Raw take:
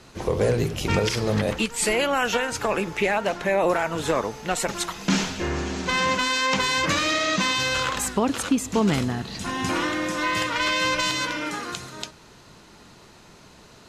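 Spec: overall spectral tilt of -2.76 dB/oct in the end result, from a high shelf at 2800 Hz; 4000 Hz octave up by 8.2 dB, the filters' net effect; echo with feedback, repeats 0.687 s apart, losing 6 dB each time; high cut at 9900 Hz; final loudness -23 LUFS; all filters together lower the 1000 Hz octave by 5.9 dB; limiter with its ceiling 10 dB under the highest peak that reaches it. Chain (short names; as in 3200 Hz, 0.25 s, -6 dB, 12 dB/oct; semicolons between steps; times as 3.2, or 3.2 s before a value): LPF 9900 Hz; bell 1000 Hz -8 dB; high shelf 2800 Hz +3 dB; bell 4000 Hz +8.5 dB; limiter -13 dBFS; feedback echo 0.687 s, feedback 50%, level -6 dB; gain -0.5 dB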